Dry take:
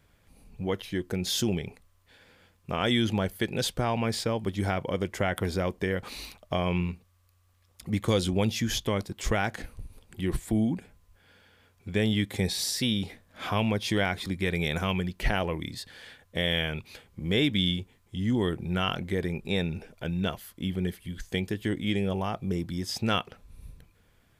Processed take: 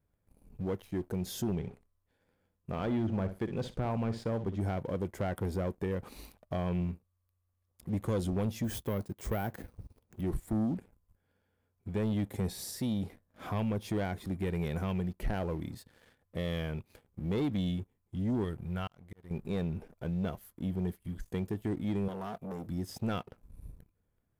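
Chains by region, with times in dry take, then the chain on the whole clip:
1.53–4.61 s: low-pass that closes with the level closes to 2 kHz, closed at -21 dBFS + flutter echo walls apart 10.5 m, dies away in 0.28 s
8.64–10.21 s: high-pass 56 Hz + careless resampling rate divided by 3×, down none, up hold
18.44–19.31 s: peaking EQ 300 Hz -9.5 dB 1.6 oct + slow attack 548 ms
22.08–22.67 s: tilt EQ +1.5 dB/octave + comb 4.3 ms, depth 44% + transformer saturation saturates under 1.6 kHz
whole clip: peaking EQ 3.6 kHz -14.5 dB 2.9 oct; waveshaping leveller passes 2; trim -9 dB

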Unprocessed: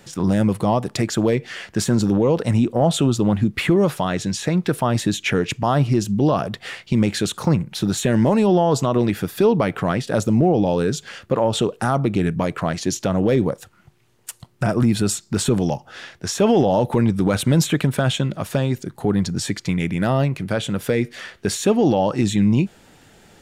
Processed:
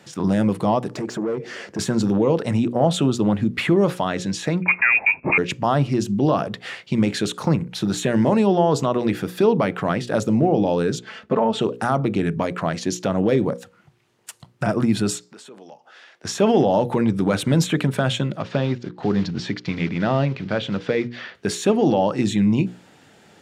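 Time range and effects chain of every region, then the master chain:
0.90–1.79 s: high-order bell 1.6 kHz -12 dB 2.9 oct + compression 10:1, threshold -23 dBFS + overdrive pedal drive 23 dB, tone 1.3 kHz, clips at -15 dBFS
4.62–5.38 s: waveshaping leveller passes 1 + frequency inversion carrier 2.6 kHz
10.99–11.61 s: low-pass 2.5 kHz 6 dB/octave + comb 4.6 ms, depth 80%
15.25–16.25 s: high-pass 410 Hz + treble shelf 12 kHz -6.5 dB + compression 2.5:1, threshold -47 dBFS
18.40–21.35 s: block-companded coder 5-bit + low-pass 5 kHz 24 dB/octave
whole clip: high-pass 120 Hz; treble shelf 9.3 kHz -11 dB; hum notches 60/120/180/240/300/360/420/480/540 Hz

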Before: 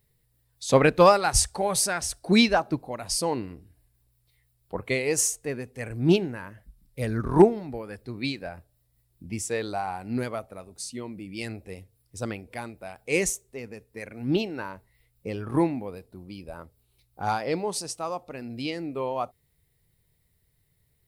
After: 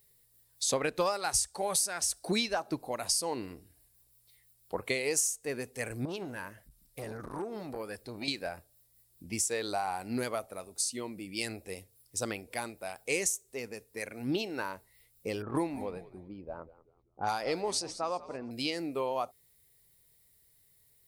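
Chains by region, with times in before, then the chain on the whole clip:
6.05–8.28 s: compression 12:1, threshold -29 dBFS + transformer saturation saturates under 430 Hz
15.42–18.51 s: level-controlled noise filter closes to 450 Hz, open at -23 dBFS + frequency-shifting echo 189 ms, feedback 36%, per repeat -79 Hz, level -17.5 dB
whole clip: tone controls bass -8 dB, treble +9 dB; compression 5:1, threshold -28 dBFS

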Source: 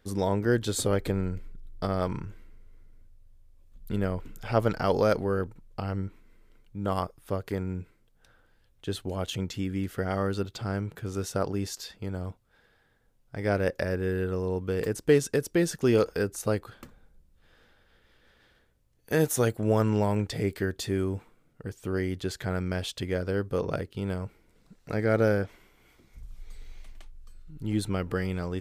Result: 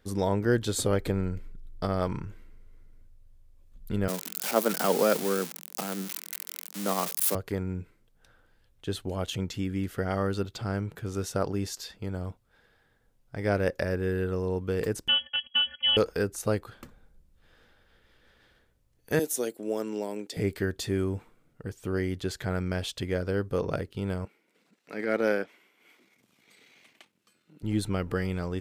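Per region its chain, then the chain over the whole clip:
4.08–7.35 s: zero-crossing glitches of -19.5 dBFS + steep high-pass 160 Hz 72 dB/octave
15.08–15.97 s: robot voice 306 Hz + frequency inversion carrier 3.3 kHz
19.19–20.37 s: high-pass 270 Hz 24 dB/octave + peaking EQ 1.2 kHz -12 dB 2.2 oct
24.25–27.63 s: transient shaper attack -10 dB, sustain -6 dB + high-pass 210 Hz 24 dB/octave + peaking EQ 2.5 kHz +7 dB 1.1 oct
whole clip: none

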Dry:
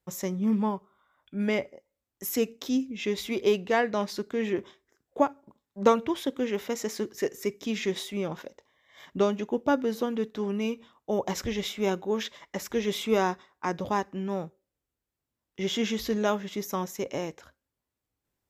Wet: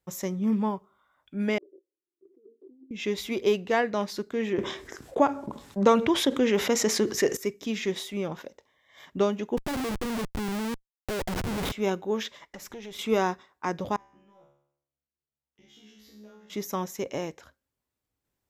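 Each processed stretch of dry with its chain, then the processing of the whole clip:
1.58–2.91 s: Butterworth band-pass 360 Hz, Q 5 + compressor with a negative ratio -54 dBFS
4.58–7.37 s: low-pass 11 kHz + level flattener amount 50%
9.57–11.72 s: treble shelf 4 kHz -9.5 dB + Schmitt trigger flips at -35.5 dBFS
12.47–12.99 s: compression 4:1, threshold -36 dBFS + valve stage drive 32 dB, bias 0.45
13.96–16.50 s: compression 4:1, threshold -41 dBFS + feedback comb 71 Hz, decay 0.71 s, mix 100%
whole clip: none

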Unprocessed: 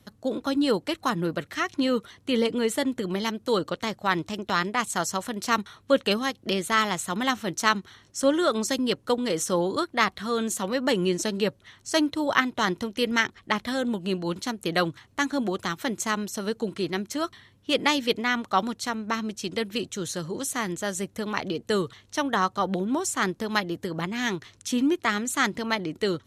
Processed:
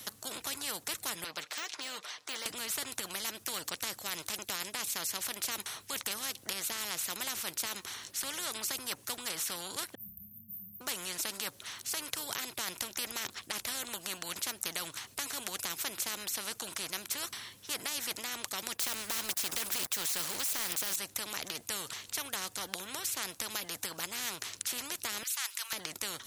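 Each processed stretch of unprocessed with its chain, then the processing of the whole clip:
1.24–2.46 s: de-esser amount 90% + three-band isolator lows -21 dB, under 490 Hz, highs -20 dB, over 5.5 kHz + comb 6.6 ms, depth 39%
9.95–10.81 s: brick-wall FIR band-stop 190–13000 Hz + flutter echo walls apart 5 m, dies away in 0.3 s
18.77–20.96 s: tilt EQ +1.5 dB/octave + waveshaping leveller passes 3
25.23–25.73 s: high-pass 1.5 kHz 24 dB/octave + treble shelf 11 kHz +6 dB
whole clip: tilt EQ +4 dB/octave; peak limiter -9.5 dBFS; spectrum-flattening compressor 4:1

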